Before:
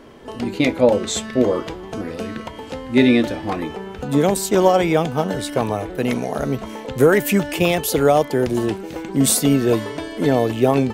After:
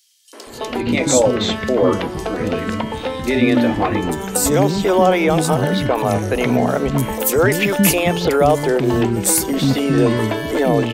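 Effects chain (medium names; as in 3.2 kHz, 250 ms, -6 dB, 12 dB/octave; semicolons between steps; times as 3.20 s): peak limiter -13 dBFS, peak gain reduction 10.5 dB; three bands offset in time highs, mids, lows 330/470 ms, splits 300/4400 Hz; trim +8.5 dB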